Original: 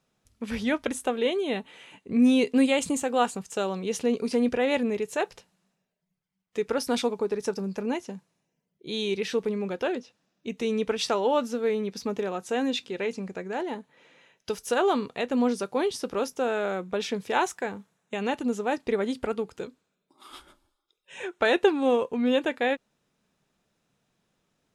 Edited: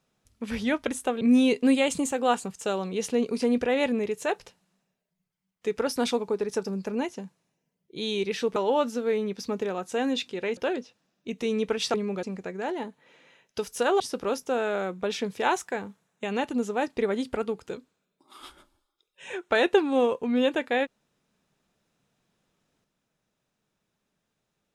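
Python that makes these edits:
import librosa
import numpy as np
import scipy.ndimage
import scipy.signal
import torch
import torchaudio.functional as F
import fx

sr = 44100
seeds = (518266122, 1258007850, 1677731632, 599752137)

y = fx.edit(x, sr, fx.cut(start_s=1.21, length_s=0.91),
    fx.swap(start_s=9.47, length_s=0.29, other_s=11.13, other_length_s=2.01),
    fx.cut(start_s=14.91, length_s=0.99), tone=tone)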